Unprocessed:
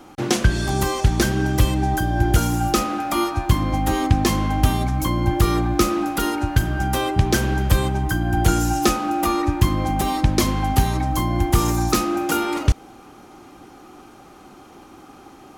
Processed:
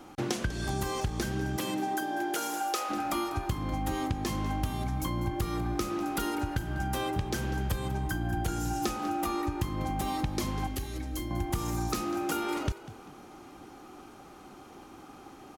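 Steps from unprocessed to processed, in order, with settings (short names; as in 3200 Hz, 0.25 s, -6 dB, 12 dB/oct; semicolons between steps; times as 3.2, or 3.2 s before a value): 1.56–2.89 HPF 190 Hz -> 490 Hz 24 dB/oct; compressor, threshold -23 dBFS, peak gain reduction 13 dB; 10.67–11.31 fixed phaser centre 370 Hz, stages 4; frequency-shifting echo 0.196 s, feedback 33%, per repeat +47 Hz, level -15.5 dB; gain -5 dB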